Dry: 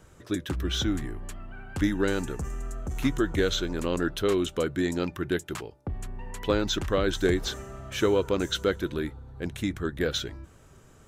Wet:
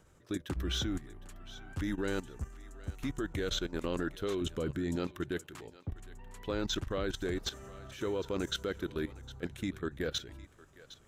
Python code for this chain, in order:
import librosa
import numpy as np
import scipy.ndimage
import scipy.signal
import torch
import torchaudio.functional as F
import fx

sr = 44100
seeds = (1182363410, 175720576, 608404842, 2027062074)

y = fx.low_shelf(x, sr, hz=330.0, db=10.5, at=(4.41, 4.96))
y = fx.level_steps(y, sr, step_db=15)
y = fx.echo_thinned(y, sr, ms=759, feedback_pct=19, hz=800.0, wet_db=-16.0)
y = y * 10.0 ** (-3.0 / 20.0)